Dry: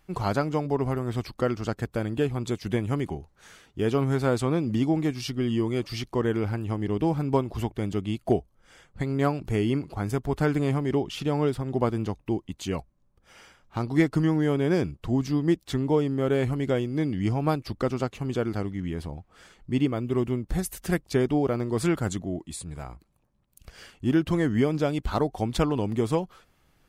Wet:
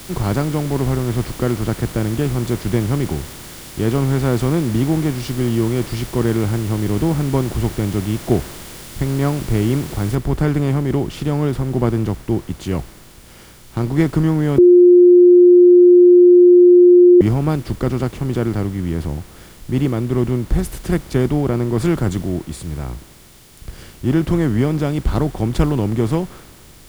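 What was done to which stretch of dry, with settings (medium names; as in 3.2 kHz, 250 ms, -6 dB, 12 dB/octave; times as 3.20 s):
0.91–1.71 s: low-pass 5.1 kHz 24 dB/octave
10.15 s: noise floor step -41 dB -53 dB
14.58–17.21 s: bleep 355 Hz -7.5 dBFS
whole clip: spectral levelling over time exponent 0.6; tone controls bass +9 dB, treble -1 dB; three bands expanded up and down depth 40%; trim -1 dB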